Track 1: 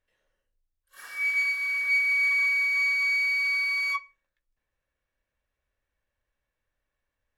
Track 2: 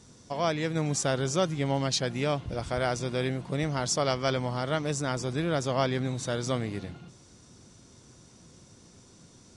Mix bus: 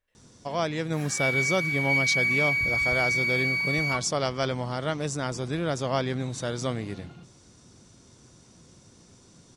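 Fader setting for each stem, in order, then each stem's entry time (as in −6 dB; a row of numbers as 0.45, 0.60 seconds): −1.0, 0.0 decibels; 0.00, 0.15 seconds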